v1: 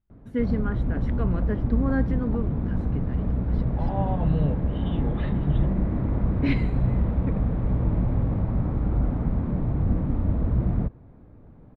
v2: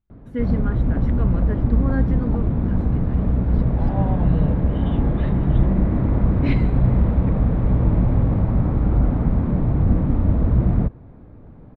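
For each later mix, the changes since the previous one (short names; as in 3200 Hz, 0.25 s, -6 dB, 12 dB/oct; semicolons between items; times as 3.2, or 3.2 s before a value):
background +6.0 dB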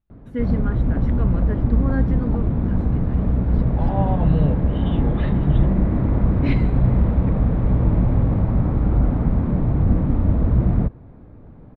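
second voice +4.5 dB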